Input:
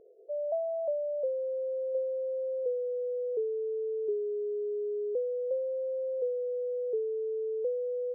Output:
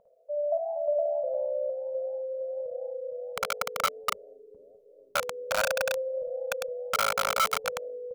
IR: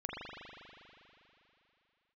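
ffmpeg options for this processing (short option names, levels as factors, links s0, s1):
-filter_complex "[0:a]flanger=delay=9.9:depth=7.2:regen=-89:speed=1.4:shape=triangular,aecho=1:1:54|73|464|515|665:0.596|0.299|0.708|0.112|0.141,asplit=2[s0][s1];[1:a]atrim=start_sample=2205[s2];[s1][s2]afir=irnorm=-1:irlink=0,volume=0.0708[s3];[s0][s3]amix=inputs=2:normalize=0,asubboost=boost=8.5:cutoff=250,aeval=exprs='(mod(18.8*val(0)+1,2)-1)/18.8':c=same,firequalizer=gain_entry='entry(200,0);entry(370,-29);entry(550,5);entry(910,11);entry(1600,2)':delay=0.05:min_phase=1,volume=1.26"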